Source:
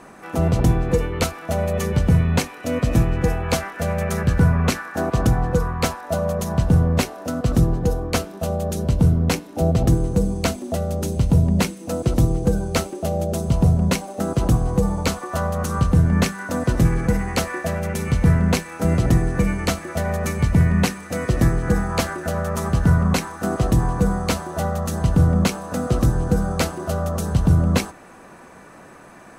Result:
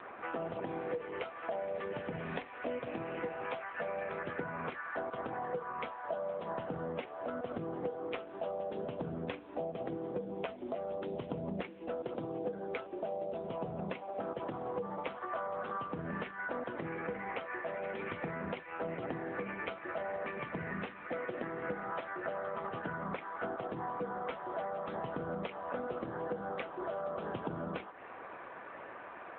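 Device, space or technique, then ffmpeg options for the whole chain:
voicemail: -af "highpass=400,lowpass=3000,acompressor=threshold=0.02:ratio=12" -ar 8000 -c:a libopencore_amrnb -b:a 7950

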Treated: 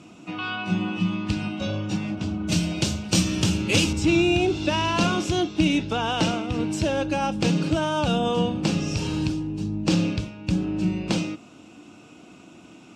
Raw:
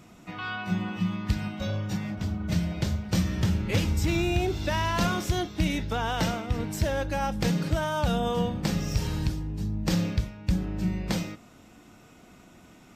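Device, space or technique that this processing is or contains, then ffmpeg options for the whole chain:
car door speaker: -filter_complex "[0:a]asettb=1/sr,asplit=3[s0][s1][s2];[s0]atrim=end=2.474[s3];[s1]atrim=start=2.47:end=3.93,asetpts=PTS-STARTPTS,afade=t=in:d=0.004:c=qsin,afade=t=out:st=1.456:d=0.004:c=qsin,aemphasis=mode=production:type=75kf[s4];[s2]atrim=start=3.926[s5];[s3][s4]acrossfade=d=0.004:c1=hsin:c2=qsin[s6];[s6][s5]acrossfade=d=0.004:c1=qsin:c2=hsin,highpass=110,equalizer=f=310:t=q:w=4:g=8,equalizer=f=1900:t=q:w=4:g=-9,equalizer=f=2700:t=q:w=4:g=8,lowpass=f=9000:w=0.5412,lowpass=f=9000:w=1.3066,volume=1.5"

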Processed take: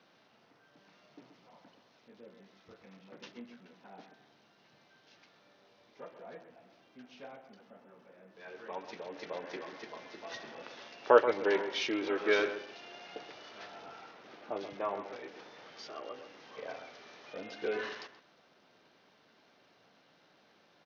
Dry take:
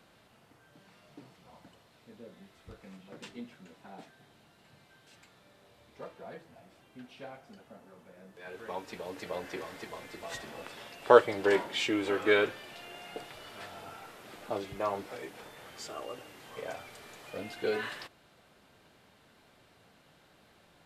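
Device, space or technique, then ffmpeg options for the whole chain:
Bluetooth headset: -filter_complex "[0:a]asettb=1/sr,asplit=3[s0][s1][s2];[s0]atrim=end=14.114[s3];[s1]atrim=start=14.11:end=14.57,asetpts=PTS-STARTPTS,afade=t=in:d=0.004:c=qsin,afade=t=out:st=0.456:d=0.004:c=qsin,lowpass=f=3500:p=1[s4];[s2]atrim=start=14.566[s5];[s3][s4]acrossfade=d=0.004:c1=hsin:c2=qsin[s6];[s6][s5]acrossfade=d=0.004:c1=qsin:c2=hsin,highpass=200,asplit=2[s7][s8];[s8]adelay=129,lowpass=f=1800:p=1,volume=0.355,asplit=2[s9][s10];[s10]adelay=129,lowpass=f=1800:p=1,volume=0.25,asplit=2[s11][s12];[s12]adelay=129,lowpass=f=1800:p=1,volume=0.25[s13];[s7][s9][s11][s13]amix=inputs=4:normalize=0,aresample=16000,aresample=44100,volume=0.708" -ar 48000 -c:a sbc -b:a 64k

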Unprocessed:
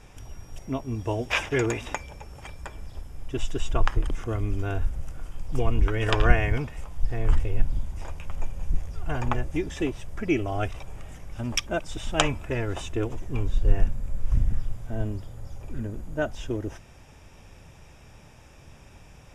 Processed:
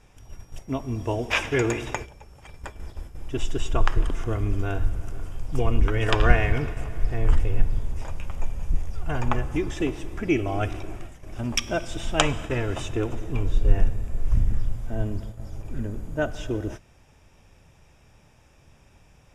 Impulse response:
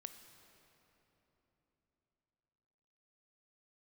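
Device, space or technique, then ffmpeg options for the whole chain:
keyed gated reverb: -filter_complex "[0:a]asplit=3[s0][s1][s2];[1:a]atrim=start_sample=2205[s3];[s1][s3]afir=irnorm=-1:irlink=0[s4];[s2]apad=whole_len=853145[s5];[s4][s5]sidechaingate=range=0.0224:threshold=0.0158:ratio=16:detection=peak,volume=2.66[s6];[s0][s6]amix=inputs=2:normalize=0,volume=0.501"

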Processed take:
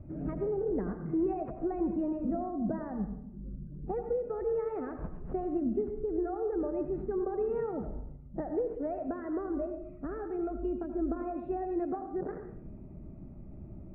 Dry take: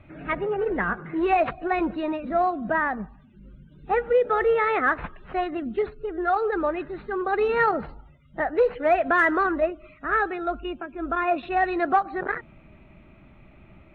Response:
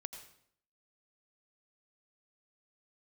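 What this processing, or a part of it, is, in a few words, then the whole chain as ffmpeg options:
television next door: -filter_complex "[0:a]acompressor=threshold=0.0282:ratio=5,lowpass=400[s0];[1:a]atrim=start_sample=2205[s1];[s0][s1]afir=irnorm=-1:irlink=0,volume=2.66"

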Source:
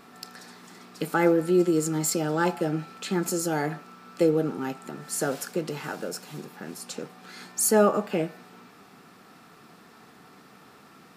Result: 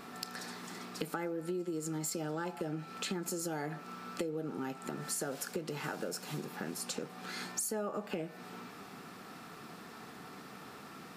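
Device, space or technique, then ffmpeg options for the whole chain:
serial compression, leveller first: -af "acompressor=threshold=0.0562:ratio=2.5,acompressor=threshold=0.0126:ratio=5,volume=1.33"

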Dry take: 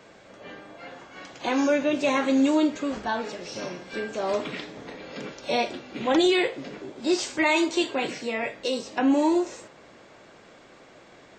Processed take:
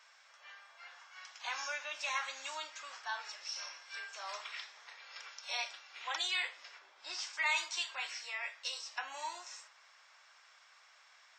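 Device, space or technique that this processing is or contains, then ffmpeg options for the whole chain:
headphones lying on a table: -filter_complex "[0:a]highpass=f=1000:w=0.5412,highpass=f=1000:w=1.3066,equalizer=f=5400:t=o:w=0.21:g=10,asplit=3[s0][s1][s2];[s0]afade=t=out:st=6.78:d=0.02[s3];[s1]aemphasis=mode=reproduction:type=bsi,afade=t=in:st=6.78:d=0.02,afade=t=out:st=7.32:d=0.02[s4];[s2]afade=t=in:st=7.32:d=0.02[s5];[s3][s4][s5]amix=inputs=3:normalize=0,volume=0.422"

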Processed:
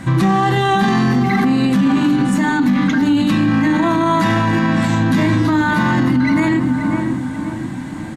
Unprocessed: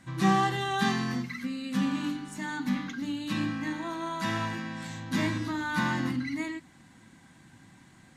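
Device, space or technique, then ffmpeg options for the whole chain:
mastering chain: -filter_complex "[0:a]equalizer=f=5600:t=o:w=0.77:g=-2.5,asplit=2[s0][s1];[s1]adelay=535,lowpass=f=1600:p=1,volume=0.282,asplit=2[s2][s3];[s3]adelay=535,lowpass=f=1600:p=1,volume=0.5,asplit=2[s4][s5];[s5]adelay=535,lowpass=f=1600:p=1,volume=0.5,asplit=2[s6][s7];[s7]adelay=535,lowpass=f=1600:p=1,volume=0.5,asplit=2[s8][s9];[s9]adelay=535,lowpass=f=1600:p=1,volume=0.5[s10];[s0][s2][s4][s6][s8][s10]amix=inputs=6:normalize=0,acompressor=threshold=0.0447:ratio=2.5,asoftclip=type=tanh:threshold=0.112,tiltshelf=f=1400:g=3.5,asoftclip=type=hard:threshold=0.106,alimiter=level_in=28.2:limit=0.891:release=50:level=0:latency=1,volume=0.447"

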